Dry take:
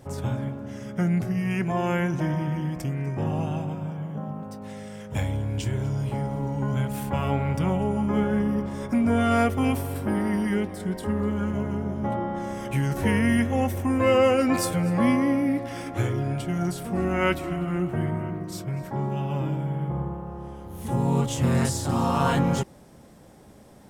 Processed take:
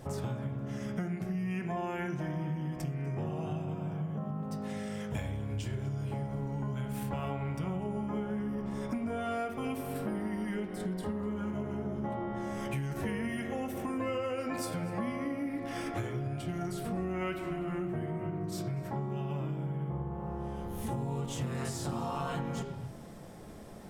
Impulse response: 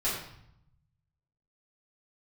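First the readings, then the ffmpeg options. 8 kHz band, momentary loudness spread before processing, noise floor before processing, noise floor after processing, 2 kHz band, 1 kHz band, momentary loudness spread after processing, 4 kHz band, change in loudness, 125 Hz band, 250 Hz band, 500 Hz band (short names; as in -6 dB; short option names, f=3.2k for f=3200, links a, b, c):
-10.0 dB, 11 LU, -49 dBFS, -42 dBFS, -11.0 dB, -10.0 dB, 3 LU, -10.0 dB, -10.0 dB, -9.0 dB, -10.0 dB, -10.0 dB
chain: -filter_complex "[0:a]asplit=2[a][b];[1:a]atrim=start_sample=2205,afade=t=out:st=0.34:d=0.01,atrim=end_sample=15435,lowpass=5.2k[c];[b][c]afir=irnorm=-1:irlink=0,volume=-12dB[d];[a][d]amix=inputs=2:normalize=0,acompressor=threshold=-33dB:ratio=6"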